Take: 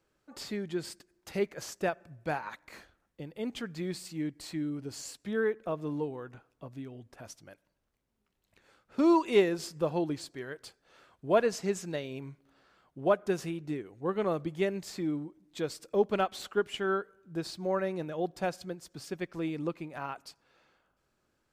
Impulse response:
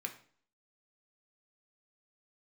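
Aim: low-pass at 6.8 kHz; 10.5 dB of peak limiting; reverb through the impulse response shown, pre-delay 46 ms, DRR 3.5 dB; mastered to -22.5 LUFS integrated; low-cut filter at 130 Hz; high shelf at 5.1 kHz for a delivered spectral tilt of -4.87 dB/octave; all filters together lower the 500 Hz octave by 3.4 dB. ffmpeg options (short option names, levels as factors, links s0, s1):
-filter_complex "[0:a]highpass=130,lowpass=6800,equalizer=f=500:t=o:g=-4.5,highshelf=f=5100:g=-5.5,alimiter=level_in=1.12:limit=0.0631:level=0:latency=1,volume=0.891,asplit=2[s0][s1];[1:a]atrim=start_sample=2205,adelay=46[s2];[s1][s2]afir=irnorm=-1:irlink=0,volume=0.708[s3];[s0][s3]amix=inputs=2:normalize=0,volume=5.62"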